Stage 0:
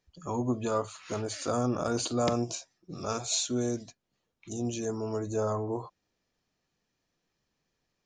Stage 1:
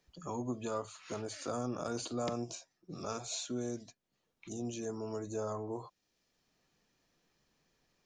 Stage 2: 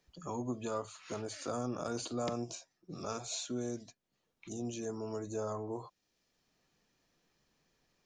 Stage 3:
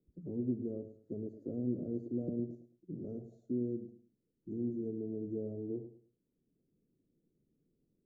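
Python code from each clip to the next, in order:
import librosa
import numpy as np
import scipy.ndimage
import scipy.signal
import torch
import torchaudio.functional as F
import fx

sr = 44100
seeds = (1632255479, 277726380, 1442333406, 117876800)

y1 = fx.peak_eq(x, sr, hz=83.0, db=-5.5, octaves=0.69)
y1 = fx.band_squash(y1, sr, depth_pct=40)
y1 = F.gain(torch.from_numpy(y1), -7.5).numpy()
y2 = y1
y3 = scipy.signal.sosfilt(scipy.signal.cheby2(4, 50, 980.0, 'lowpass', fs=sr, output='sos'), y2)
y3 = fx.low_shelf(y3, sr, hz=110.0, db=-10.0)
y3 = fx.echo_feedback(y3, sr, ms=106, feedback_pct=26, wet_db=-11.5)
y3 = F.gain(torch.from_numpy(y3), 5.5).numpy()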